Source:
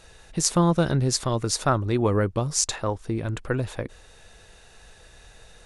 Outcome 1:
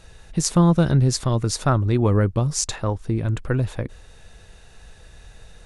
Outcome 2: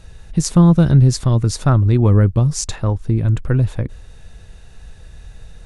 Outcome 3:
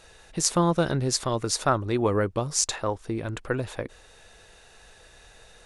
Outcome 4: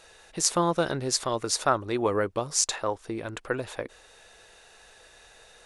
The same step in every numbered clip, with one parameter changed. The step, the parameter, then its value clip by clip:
tone controls, bass: +7, +15, -5, -14 dB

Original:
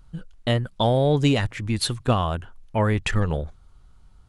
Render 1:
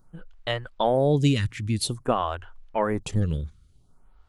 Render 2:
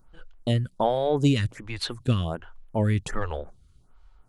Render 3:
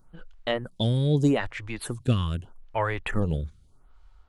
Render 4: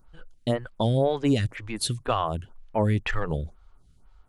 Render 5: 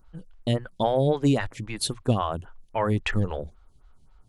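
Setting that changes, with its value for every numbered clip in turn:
photocell phaser, rate: 0.51, 1.3, 0.8, 2, 3.7 Hz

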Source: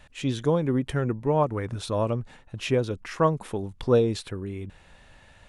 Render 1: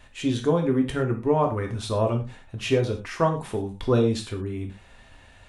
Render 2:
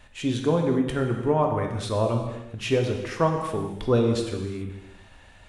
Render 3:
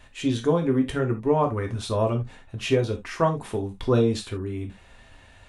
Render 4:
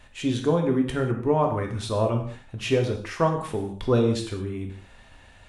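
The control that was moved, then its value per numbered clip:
non-linear reverb, gate: 0.14, 0.44, 0.1, 0.23 s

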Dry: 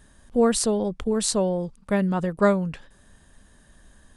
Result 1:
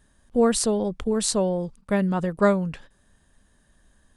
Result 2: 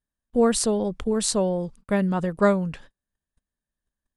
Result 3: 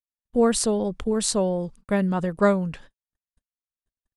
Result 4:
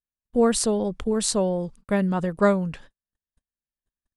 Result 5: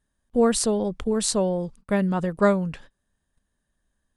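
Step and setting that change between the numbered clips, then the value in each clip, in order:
gate, range: -7, -35, -60, -47, -22 dB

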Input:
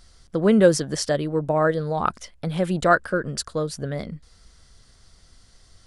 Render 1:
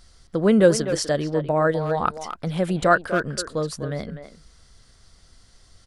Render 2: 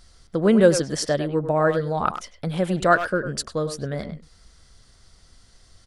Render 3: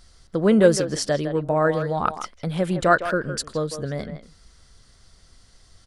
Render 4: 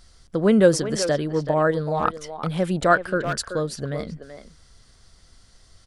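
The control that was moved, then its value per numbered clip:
speakerphone echo, time: 0.25, 0.1, 0.16, 0.38 s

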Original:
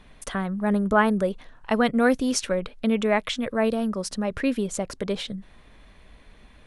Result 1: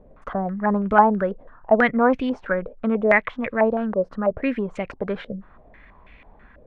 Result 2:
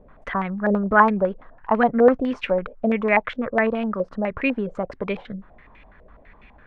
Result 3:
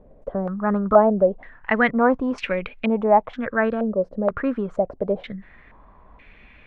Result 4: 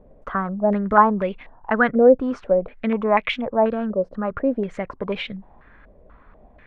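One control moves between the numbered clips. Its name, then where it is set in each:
stepped low-pass, rate: 6.1, 12, 2.1, 4.1 Hz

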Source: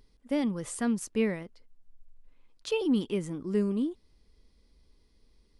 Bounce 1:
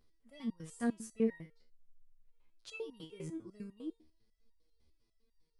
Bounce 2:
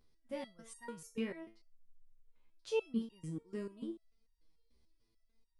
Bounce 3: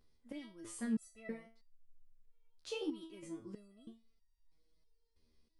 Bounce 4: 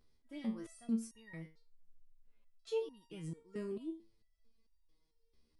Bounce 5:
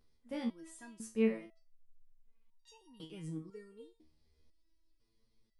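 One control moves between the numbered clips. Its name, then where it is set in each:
stepped resonator, rate: 10, 6.8, 3.1, 4.5, 2 Hz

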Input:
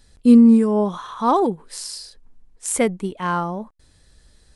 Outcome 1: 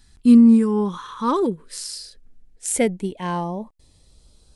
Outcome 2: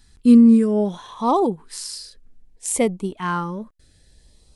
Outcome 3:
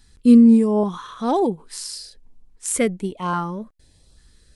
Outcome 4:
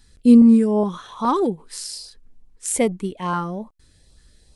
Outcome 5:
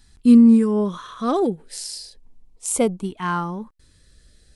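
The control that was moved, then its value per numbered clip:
LFO notch, rate: 0.21, 0.64, 1.2, 2.4, 0.33 Hz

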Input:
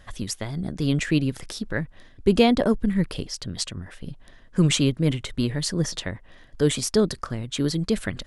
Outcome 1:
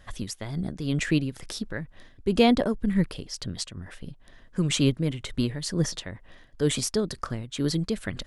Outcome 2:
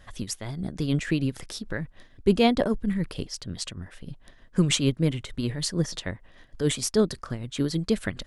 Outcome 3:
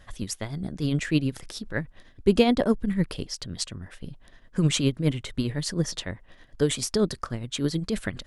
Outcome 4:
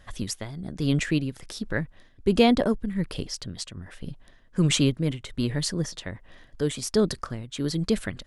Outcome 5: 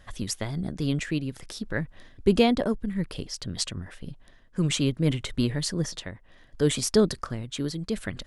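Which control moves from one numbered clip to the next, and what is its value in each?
tremolo, rate: 2.1, 6.6, 9.7, 1.3, 0.61 Hz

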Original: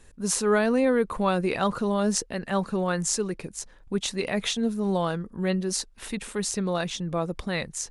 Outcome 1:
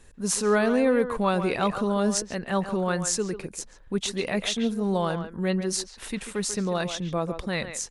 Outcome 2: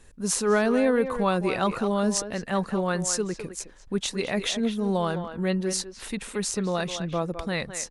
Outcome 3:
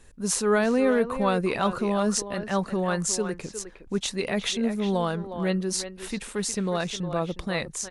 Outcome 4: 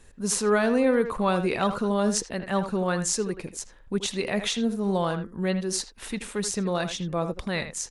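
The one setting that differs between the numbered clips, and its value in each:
speakerphone echo, time: 140, 210, 360, 80 ms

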